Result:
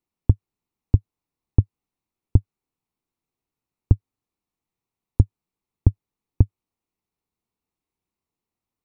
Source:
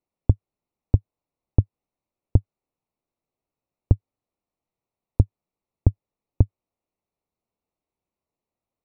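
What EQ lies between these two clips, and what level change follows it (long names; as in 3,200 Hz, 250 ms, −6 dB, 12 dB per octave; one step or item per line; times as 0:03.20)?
parametric band 590 Hz −11 dB 0.55 octaves
+1.5 dB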